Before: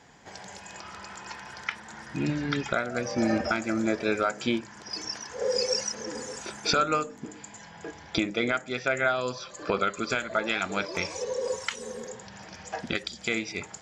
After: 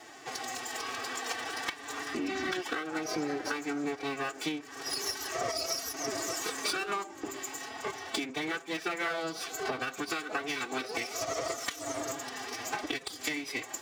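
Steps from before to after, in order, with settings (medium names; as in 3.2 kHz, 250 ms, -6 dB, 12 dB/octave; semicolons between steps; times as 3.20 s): comb filter that takes the minimum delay 3.4 ms; compression 16:1, threshold -37 dBFS, peak gain reduction 16.5 dB; formant-preserving pitch shift +4.5 st; Bessel high-pass 230 Hz, order 2; trim +8.5 dB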